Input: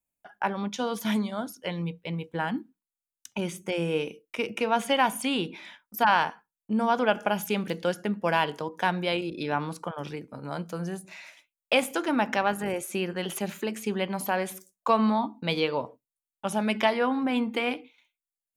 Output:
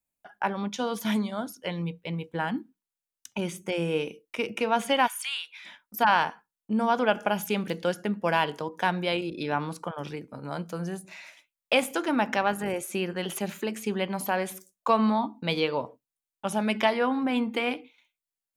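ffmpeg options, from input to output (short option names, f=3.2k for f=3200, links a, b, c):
-filter_complex "[0:a]asplit=3[a][b][c];[a]afade=t=out:st=5.06:d=0.02[d];[b]highpass=f=1.3k:w=0.5412,highpass=f=1.3k:w=1.3066,afade=t=in:st=5.06:d=0.02,afade=t=out:st=5.64:d=0.02[e];[c]afade=t=in:st=5.64:d=0.02[f];[d][e][f]amix=inputs=3:normalize=0"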